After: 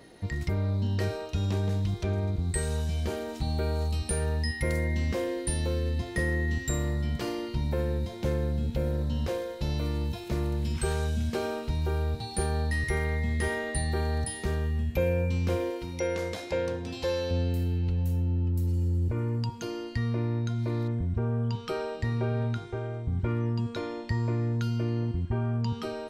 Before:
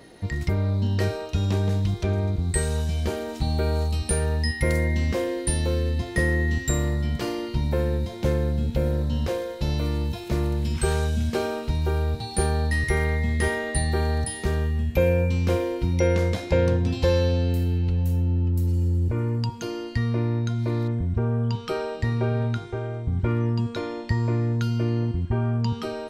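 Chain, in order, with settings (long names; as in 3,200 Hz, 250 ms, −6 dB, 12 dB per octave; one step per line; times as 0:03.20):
in parallel at −3 dB: brickwall limiter −18.5 dBFS, peak gain reduction 8.5 dB
0:15.70–0:17.31: on the sum: bass and treble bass −11 dB, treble +2 dB
level −8.5 dB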